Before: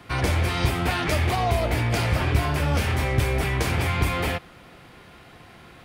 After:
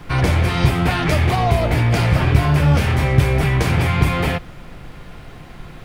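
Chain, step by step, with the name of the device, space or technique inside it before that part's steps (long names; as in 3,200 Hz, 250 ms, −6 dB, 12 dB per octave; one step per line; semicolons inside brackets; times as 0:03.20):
car interior (parametric band 150 Hz +8 dB 0.6 octaves; high-shelf EQ 4,800 Hz −5 dB; brown noise bed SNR 19 dB)
level +5 dB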